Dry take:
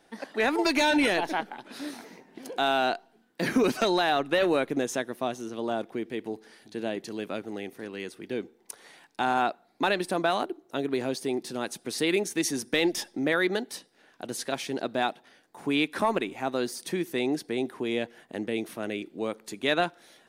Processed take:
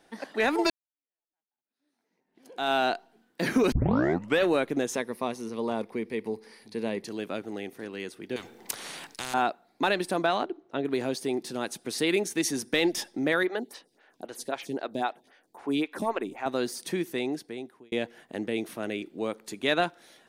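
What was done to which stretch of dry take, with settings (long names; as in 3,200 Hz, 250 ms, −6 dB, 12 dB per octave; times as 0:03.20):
0:00.70–0:02.72: fade in exponential
0:03.72: tape start 0.70 s
0:04.95–0:07.05: EQ curve with evenly spaced ripples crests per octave 0.89, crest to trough 8 dB
0:08.36–0:09.34: every bin compressed towards the loudest bin 4 to 1
0:10.26–0:10.84: low-pass filter 6,600 Hz → 2,800 Hz
0:13.43–0:16.46: phaser with staggered stages 3.8 Hz
0:16.99–0:17.92: fade out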